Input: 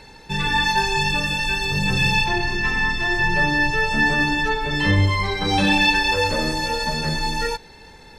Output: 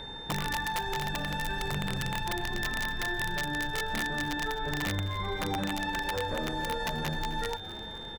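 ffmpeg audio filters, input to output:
-filter_complex "[0:a]firequalizer=gain_entry='entry(1700,0);entry(3000,-22);entry(7400,-12)':delay=0.05:min_phase=1,acompressor=threshold=-30dB:ratio=20,aeval=exprs='(mod(17.8*val(0)+1,2)-1)/17.8':c=same,aeval=exprs='val(0)+0.00708*sin(2*PI*3600*n/s)':c=same,asplit=6[a][b][c][d][e][f];[b]adelay=259,afreqshift=-120,volume=-16dB[g];[c]adelay=518,afreqshift=-240,volume=-20.9dB[h];[d]adelay=777,afreqshift=-360,volume=-25.8dB[i];[e]adelay=1036,afreqshift=-480,volume=-30.6dB[j];[f]adelay=1295,afreqshift=-600,volume=-35.5dB[k];[a][g][h][i][j][k]amix=inputs=6:normalize=0,volume=1.5dB"

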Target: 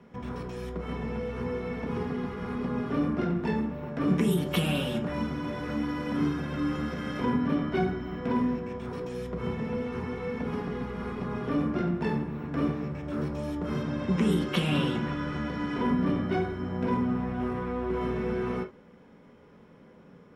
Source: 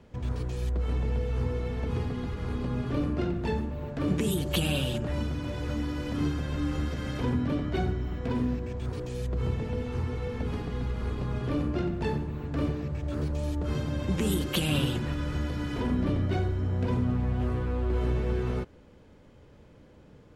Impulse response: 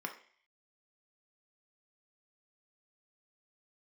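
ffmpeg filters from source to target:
-filter_complex "[0:a]asettb=1/sr,asplit=3[a][b][c];[a]atrim=end=13.824[d];[b]atrim=start=13.82:end=15.82,asetpts=PTS-STARTPTS,afade=t=in:d=0.004:c=qsin,afade=t=out:st=1.996:d=0.004:c=qsin,lowpass=7.8k[e];[c]atrim=start=15.816[f];[d][e]acrossfade=d=0.004:c1=hsin:c2=qsin[g];[g][f]acrossfade=d=0.004:c1=qsin:c2=hsin[h];[1:a]atrim=start_sample=2205,atrim=end_sample=3087[i];[h][i]afir=irnorm=-1:irlink=0,volume=1.5dB"

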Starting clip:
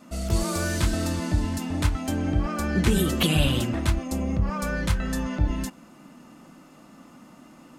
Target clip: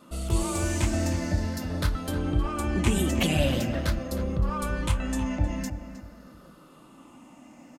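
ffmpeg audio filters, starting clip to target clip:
-filter_complex "[0:a]afftfilt=real='re*pow(10,8/40*sin(2*PI*(0.63*log(max(b,1)*sr/1024/100)/log(2)-(-0.45)*(pts-256)/sr)))':imag='im*pow(10,8/40*sin(2*PI*(0.63*log(max(b,1)*sr/1024/100)/log(2)-(-0.45)*(pts-256)/sr)))':win_size=1024:overlap=0.75,equalizer=f=550:t=o:w=0.22:g=6,asplit=2[a][b];[b]adelay=312,lowpass=f=2.4k:p=1,volume=-10dB,asplit=2[c][d];[d]adelay=312,lowpass=f=2.4k:p=1,volume=0.31,asplit=2[e][f];[f]adelay=312,lowpass=f=2.4k:p=1,volume=0.31[g];[c][e][g]amix=inputs=3:normalize=0[h];[a][h]amix=inputs=2:normalize=0,volume=-3dB"

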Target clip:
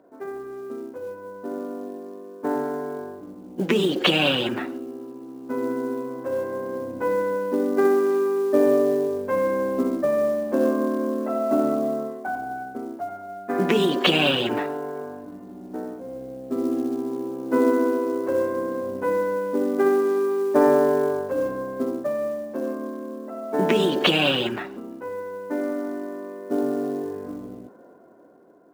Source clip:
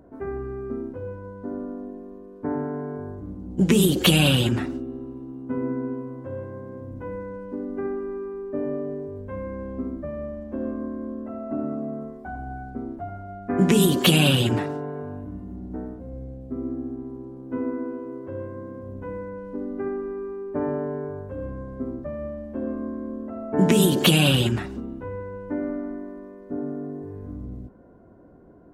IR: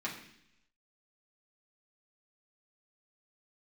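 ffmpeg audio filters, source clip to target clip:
-af "dynaudnorm=f=390:g=9:m=14dB,highpass=360,lowpass=3k,acrusher=bits=7:mode=log:mix=0:aa=0.000001"

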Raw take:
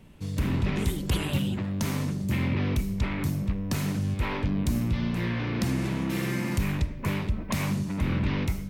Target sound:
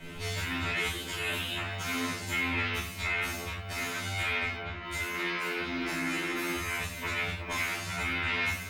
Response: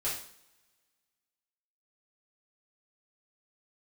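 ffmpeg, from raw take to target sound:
-filter_complex "[0:a]equalizer=f=2.2k:w=0.45:g=7,bandreject=f=50:t=h:w=6,bandreject=f=100:t=h:w=6,bandreject=f=150:t=h:w=6,acompressor=threshold=-29dB:ratio=6,alimiter=level_in=0.5dB:limit=-24dB:level=0:latency=1:release=474,volume=-0.5dB,acrossover=split=700|1400|3000|7800[a][b][c][d][e];[a]acompressor=threshold=-48dB:ratio=4[f];[b]acompressor=threshold=-51dB:ratio=4[g];[c]acompressor=threshold=-41dB:ratio=4[h];[d]acompressor=threshold=-54dB:ratio=4[i];[e]acompressor=threshold=-56dB:ratio=4[j];[f][g][h][i][j]amix=inputs=5:normalize=0,asoftclip=type=hard:threshold=-32dB,asettb=1/sr,asplit=3[k][l][m];[k]atrim=end=4.574[n];[l]atrim=start=4.57:end=7.16,asetpts=PTS-STARTPTS,afade=t=in:d=0.004:c=qsin,afade=t=out:st=2.586:d=0.004:c=qsin,acrossover=split=3200[o][p];[p]adelay=270[q];[o][q]amix=inputs=2:normalize=0,atrim=end_sample=114219[r];[m]atrim=start=7.156[s];[n][r]acrossfade=d=0.004:c1=hsin:c2=qsin[t];[t][s]acrossfade=d=0.004:c1=qsin:c2=hsin[u];[1:a]atrim=start_sample=2205,afade=t=out:st=0.17:d=0.01,atrim=end_sample=7938[v];[u][v]afir=irnorm=-1:irlink=0,afftfilt=real='re*2*eq(mod(b,4),0)':imag='im*2*eq(mod(b,4),0)':win_size=2048:overlap=0.75,volume=9dB"

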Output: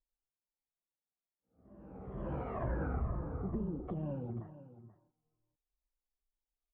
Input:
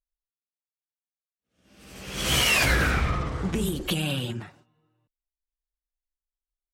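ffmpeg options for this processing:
-filter_complex "[0:a]afftfilt=real='re*pow(10,9/40*sin(2*PI*(1.3*log(max(b,1)*sr/1024/100)/log(2)-(-2.2)*(pts-256)/sr)))':imag='im*pow(10,9/40*sin(2*PI*(1.3*log(max(b,1)*sr/1024/100)/log(2)-(-2.2)*(pts-256)/sr)))':win_size=1024:overlap=0.75,lowpass=f=1k:w=0.5412,lowpass=f=1k:w=1.3066,acompressor=threshold=-54dB:ratio=1.5,asplit=2[a][b];[b]aecho=0:1:483:0.178[c];[a][c]amix=inputs=2:normalize=0"

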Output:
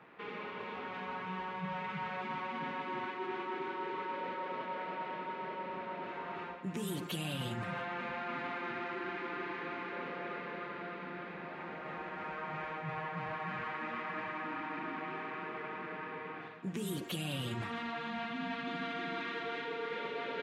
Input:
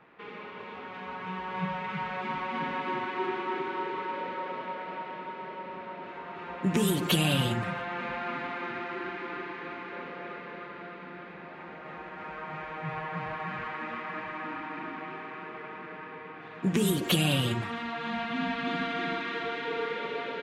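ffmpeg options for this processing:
-af "highpass=72,areverse,acompressor=threshold=-36dB:ratio=6,areverse"

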